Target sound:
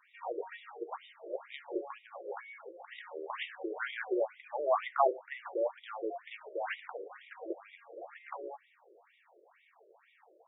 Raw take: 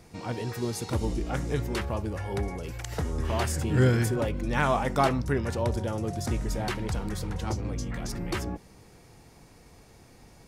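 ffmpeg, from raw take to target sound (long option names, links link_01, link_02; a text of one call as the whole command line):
ffmpeg -i in.wav -af "afftfilt=real='re*between(b*sr/1024,430*pow(2700/430,0.5+0.5*sin(2*PI*2.1*pts/sr))/1.41,430*pow(2700/430,0.5+0.5*sin(2*PI*2.1*pts/sr))*1.41)':imag='im*between(b*sr/1024,430*pow(2700/430,0.5+0.5*sin(2*PI*2.1*pts/sr))/1.41,430*pow(2700/430,0.5+0.5*sin(2*PI*2.1*pts/sr))*1.41)':win_size=1024:overlap=0.75" out.wav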